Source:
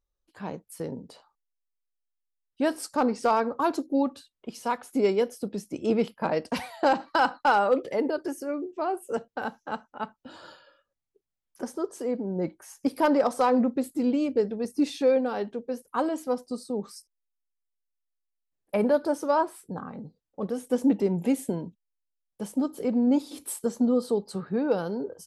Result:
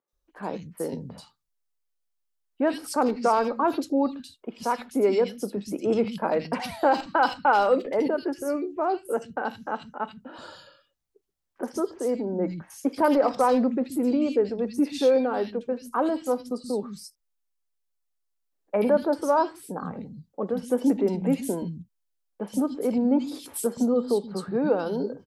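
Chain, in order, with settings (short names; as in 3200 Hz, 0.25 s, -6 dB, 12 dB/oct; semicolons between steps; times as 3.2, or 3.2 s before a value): in parallel at -2.5 dB: limiter -24 dBFS, peak gain reduction 10.5 dB; on the sum: dynamic EQ 8000 Hz, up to -4 dB, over -49 dBFS, Q 1; three bands offset in time mids, highs, lows 80/130 ms, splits 190/2300 Hz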